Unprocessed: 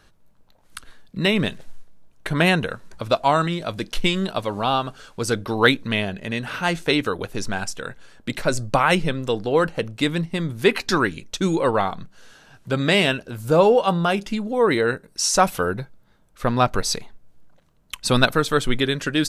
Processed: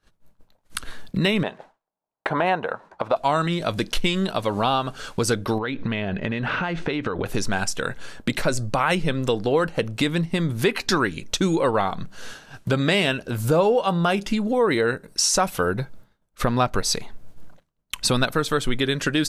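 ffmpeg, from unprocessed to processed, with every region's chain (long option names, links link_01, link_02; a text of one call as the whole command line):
ffmpeg -i in.wav -filter_complex "[0:a]asettb=1/sr,asplit=3[link_01][link_02][link_03];[link_01]atrim=end=1.434[link_04];[link_02]atrim=start=1.43:end=3.16,asetpts=PTS-STARTPTS,afade=type=in:duration=0.004:curve=qsin,afade=type=out:start_time=1.726:duration=0.004:curve=qsin,bandpass=frequency=800:width_type=q:width=0.81,equalizer=frequency=830:width_type=o:width=0.78:gain=8[link_05];[link_03]atrim=start=3.156[link_06];[link_04][link_05]acrossfade=duration=0.004:curve1=hsin:curve2=qsin[link_07];[link_07][link_06]acrossfade=duration=0.004:curve1=qsin:curve2=hsin,asettb=1/sr,asplit=3[link_08][link_09][link_10];[link_08]atrim=end=5.584[link_11];[link_09]atrim=start=5.58:end=7.26,asetpts=PTS-STARTPTS,afade=type=in:duration=0.004:curve=qsin,afade=type=out:start_time=1.676:duration=0.004:curve=qsin,lowpass=2800,acompressor=threshold=-27dB:ratio=12:attack=3.2:release=140:knee=1:detection=peak[link_12];[link_10]atrim=start=7.256[link_13];[link_11][link_12]acrossfade=duration=0.004:curve1=hsin:curve2=qsin[link_14];[link_14][link_13]acrossfade=duration=0.004:curve1=qsin:curve2=hsin,agate=range=-33dB:threshold=-42dB:ratio=3:detection=peak,acompressor=threshold=-38dB:ratio=2.5,alimiter=level_in=20.5dB:limit=-1dB:release=50:level=0:latency=1,volume=-7.5dB" out.wav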